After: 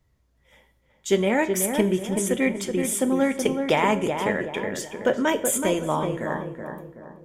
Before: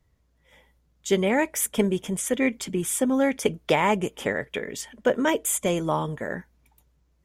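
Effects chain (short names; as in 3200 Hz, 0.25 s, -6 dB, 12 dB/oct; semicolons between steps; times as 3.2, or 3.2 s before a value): darkening echo 0.376 s, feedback 44%, low-pass 1400 Hz, level -5 dB; on a send at -10 dB: reverb, pre-delay 3 ms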